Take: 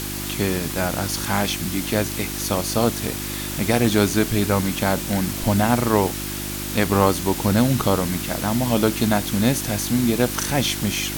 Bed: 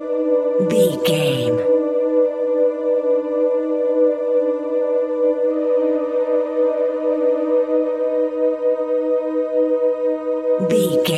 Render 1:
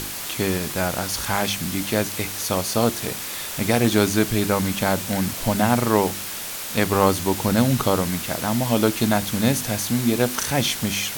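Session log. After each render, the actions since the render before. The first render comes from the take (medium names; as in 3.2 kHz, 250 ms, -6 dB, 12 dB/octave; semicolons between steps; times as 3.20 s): de-hum 50 Hz, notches 7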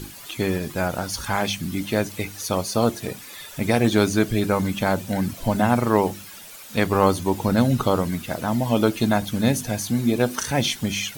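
noise reduction 13 dB, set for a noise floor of -31 dBFS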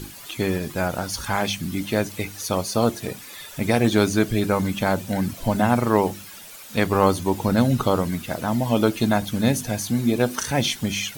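no audible change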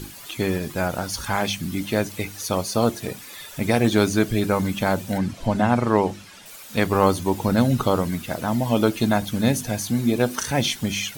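5.18–6.46 s: distance through air 55 m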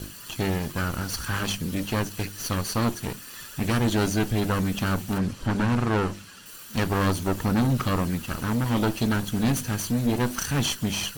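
comb filter that takes the minimum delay 0.68 ms; saturation -16.5 dBFS, distortion -12 dB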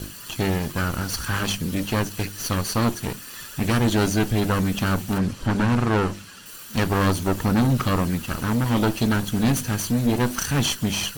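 trim +3 dB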